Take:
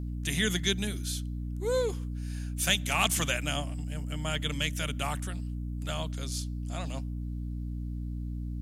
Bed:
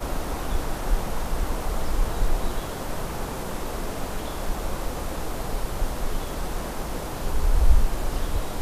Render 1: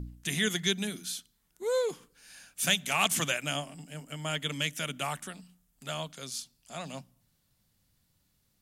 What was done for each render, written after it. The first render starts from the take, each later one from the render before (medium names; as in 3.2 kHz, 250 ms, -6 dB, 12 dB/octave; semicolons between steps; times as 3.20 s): de-hum 60 Hz, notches 5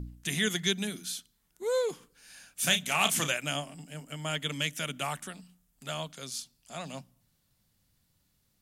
2.60–3.29 s: doubling 33 ms -8.5 dB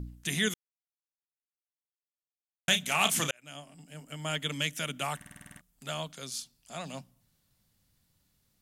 0.54–2.68 s: mute; 3.31–4.31 s: fade in linear; 5.16 s: stutter in place 0.05 s, 9 plays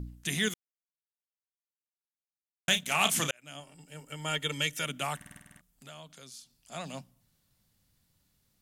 0.37–2.91 s: companding laws mixed up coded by A; 3.60–4.85 s: comb 2.2 ms, depth 55%; 5.38–6.72 s: compression 2:1, threshold -53 dBFS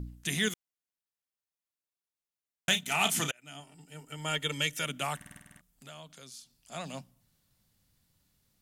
2.71–4.18 s: comb of notches 550 Hz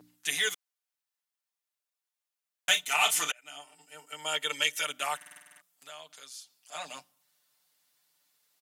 high-pass 650 Hz 12 dB/octave; comb 6.7 ms, depth 100%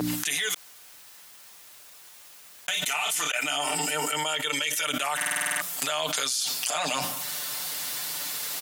peak limiter -19.5 dBFS, peak gain reduction 10.5 dB; level flattener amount 100%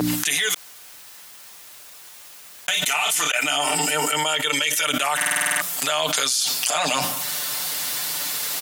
trim +6 dB; peak limiter -2 dBFS, peak gain reduction 2.5 dB